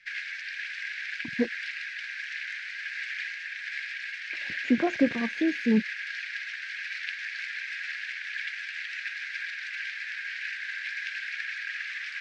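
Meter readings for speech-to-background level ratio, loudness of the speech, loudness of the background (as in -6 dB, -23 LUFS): 6.5 dB, -27.5 LUFS, -34.0 LUFS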